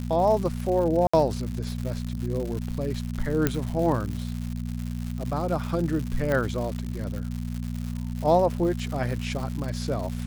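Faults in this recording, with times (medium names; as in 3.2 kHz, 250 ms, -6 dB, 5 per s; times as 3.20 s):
crackle 210 per s -31 dBFS
hum 60 Hz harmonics 4 -31 dBFS
1.07–1.14 s: dropout 65 ms
3.47 s: pop -7 dBFS
6.32 s: pop -14 dBFS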